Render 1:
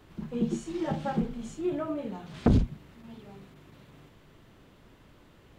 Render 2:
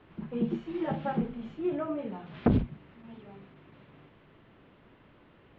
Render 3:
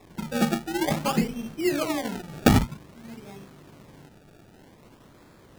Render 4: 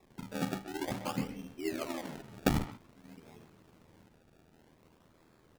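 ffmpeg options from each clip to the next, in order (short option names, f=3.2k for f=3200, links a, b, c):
-af "lowpass=f=3.1k:w=0.5412,lowpass=f=3.1k:w=1.3066,lowshelf=f=77:g=-10.5"
-af "acrusher=samples=29:mix=1:aa=0.000001:lfo=1:lforange=29:lforate=0.52,volume=6dB"
-filter_complex "[0:a]aeval=exprs='val(0)*sin(2*PI*40*n/s)':c=same,asplit=2[a][b];[b]adelay=130,highpass=300,lowpass=3.4k,asoftclip=type=hard:threshold=-16dB,volume=-10dB[c];[a][c]amix=inputs=2:normalize=0,volume=-8.5dB"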